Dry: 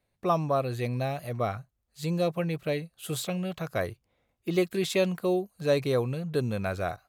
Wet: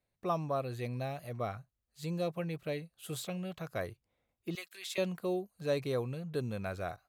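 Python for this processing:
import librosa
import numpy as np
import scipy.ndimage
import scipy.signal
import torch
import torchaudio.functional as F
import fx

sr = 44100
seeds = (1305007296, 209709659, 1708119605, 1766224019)

y = fx.highpass(x, sr, hz=1400.0, slope=12, at=(4.55, 4.98))
y = y * librosa.db_to_amplitude(-7.5)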